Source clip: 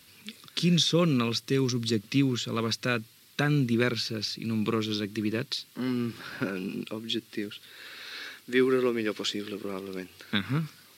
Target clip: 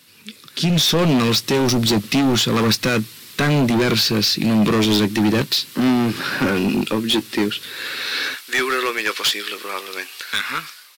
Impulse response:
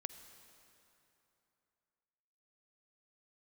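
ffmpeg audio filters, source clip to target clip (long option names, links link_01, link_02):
-filter_complex "[0:a]asetnsamples=nb_out_samples=441:pad=0,asendcmd='8.35 highpass f 970',highpass=120,alimiter=limit=-20.5dB:level=0:latency=1:release=11,dynaudnorm=framelen=460:gausssize=3:maxgain=13dB,asoftclip=type=hard:threshold=-18dB,asplit=2[link_01][link_02];[link_02]adelay=19,volume=-14dB[link_03];[link_01][link_03]amix=inputs=2:normalize=0,volume=4dB"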